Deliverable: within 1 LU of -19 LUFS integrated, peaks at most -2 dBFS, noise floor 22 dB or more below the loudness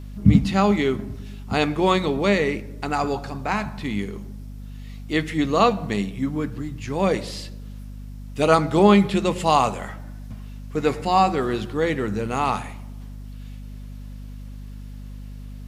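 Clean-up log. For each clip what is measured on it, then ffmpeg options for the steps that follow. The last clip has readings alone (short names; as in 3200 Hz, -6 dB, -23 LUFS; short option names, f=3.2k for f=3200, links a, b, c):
hum 50 Hz; harmonics up to 250 Hz; hum level -34 dBFS; loudness -22.0 LUFS; peak -2.0 dBFS; loudness target -19.0 LUFS
-> -af "bandreject=f=50:t=h:w=6,bandreject=f=100:t=h:w=6,bandreject=f=150:t=h:w=6,bandreject=f=200:t=h:w=6,bandreject=f=250:t=h:w=6"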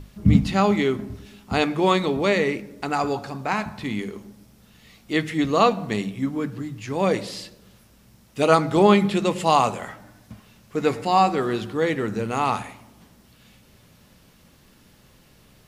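hum none; loudness -22.5 LUFS; peak -1.5 dBFS; loudness target -19.0 LUFS
-> -af "volume=3.5dB,alimiter=limit=-2dB:level=0:latency=1"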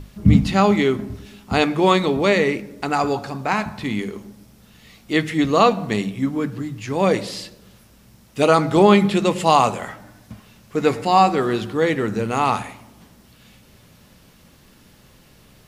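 loudness -19.0 LUFS; peak -2.0 dBFS; noise floor -51 dBFS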